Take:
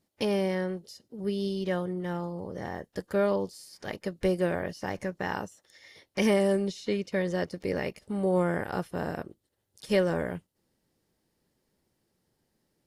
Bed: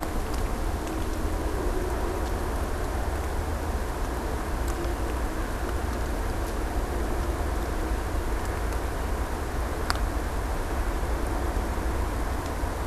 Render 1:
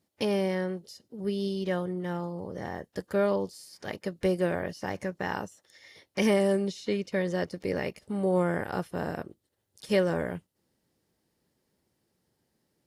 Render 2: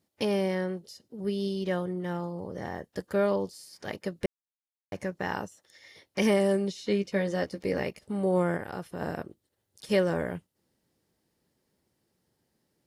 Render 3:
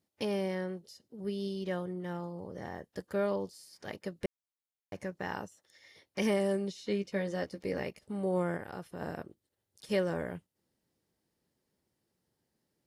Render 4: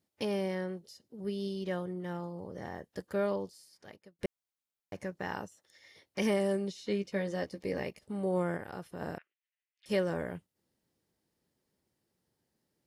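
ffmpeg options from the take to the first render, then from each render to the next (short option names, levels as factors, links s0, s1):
-af "highpass=49"
-filter_complex "[0:a]asettb=1/sr,asplit=3[s0][s1][s2];[s0]atrim=end=6.774[s3];[s1]atrim=start=6.77:end=7.83,asetpts=PTS-STARTPTS,afade=t=in:d=0.004:c=qsin,afade=t=out:st=1.056:d=0.004:c=qsin,asplit=2[s4][s5];[s5]adelay=15,volume=0.447[s6];[s4][s6]amix=inputs=2:normalize=0,atrim=end_sample=46746[s7];[s2]atrim=start=7.826[s8];[s3][s7]acrossfade=d=0.004:c1=hsin:c2=qsin[s9];[s9][s8]acrossfade=d=0.004:c1=qsin:c2=hsin,asplit=3[s10][s11][s12];[s10]afade=t=out:st=8.56:d=0.02[s13];[s11]acompressor=threshold=0.0178:ratio=2:attack=3.2:release=140:knee=1:detection=peak,afade=t=in:st=8.56:d=0.02,afade=t=out:st=9:d=0.02[s14];[s12]afade=t=in:st=9:d=0.02[s15];[s13][s14][s15]amix=inputs=3:normalize=0,asplit=3[s16][s17][s18];[s16]atrim=end=4.26,asetpts=PTS-STARTPTS,afade=t=out:st=4.256:d=0.004:c=hsin[s19];[s17]atrim=start=4.26:end=4.92,asetpts=PTS-STARTPTS,volume=0[s20];[s18]atrim=start=4.92,asetpts=PTS-STARTPTS,afade=t=in:d=0.004:c=hsin[s21];[s19][s20][s21]concat=n=3:v=0:a=1"
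-af "volume=0.531"
-filter_complex "[0:a]asettb=1/sr,asplit=3[s0][s1][s2];[s0]atrim=end=7.354[s3];[s1]atrim=start=7.35:end=8.02,asetpts=PTS-STARTPTS,afade=t=in:d=0.004:c=qsin,afade=t=out:st=0.666:d=0.004:c=qsin,bandreject=f=1400:w=9.7[s4];[s2]atrim=start=8.016[s5];[s3][s4]acrossfade=d=0.004:c1=hsin:c2=qsin[s6];[s6][s5]acrossfade=d=0.004:c1=qsin:c2=hsin,asettb=1/sr,asplit=3[s7][s8][s9];[s7]atrim=end=9.184[s10];[s8]atrim=start=9.18:end=9.86,asetpts=PTS-STARTPTS,afade=t=in:d=0.004:c=qsin,afade=t=out:st=0.676:d=0.004:c=qsin,asuperpass=centerf=2300:order=4:qfactor=2.1[s11];[s9]atrim=start=9.856[s12];[s10][s11]acrossfade=d=0.004:c1=hsin:c2=qsin[s13];[s13][s12]acrossfade=d=0.004:c1=qsin:c2=hsin,asplit=2[s14][s15];[s14]atrim=end=4.19,asetpts=PTS-STARTPTS,afade=t=out:st=3.29:d=0.9[s16];[s15]atrim=start=4.19,asetpts=PTS-STARTPTS,afade=t=in:d=0.004:c=hsin[s17];[s16][s17]concat=n=2:v=0:a=1"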